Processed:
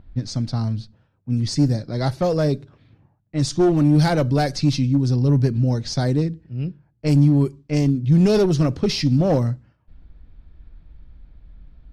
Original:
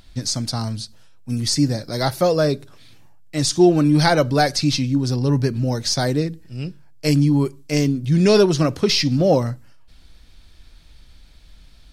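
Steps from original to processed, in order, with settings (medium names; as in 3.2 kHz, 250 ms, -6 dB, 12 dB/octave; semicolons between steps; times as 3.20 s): one-sided clip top -15 dBFS, bottom -8.5 dBFS; level-controlled noise filter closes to 1.5 kHz, open at -14 dBFS; bass shelf 360 Hz +11 dB; trim -6.5 dB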